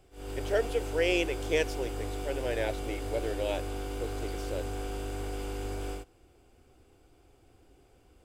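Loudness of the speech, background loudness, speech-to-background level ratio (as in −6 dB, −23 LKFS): −33.0 LKFS, −37.5 LKFS, 4.5 dB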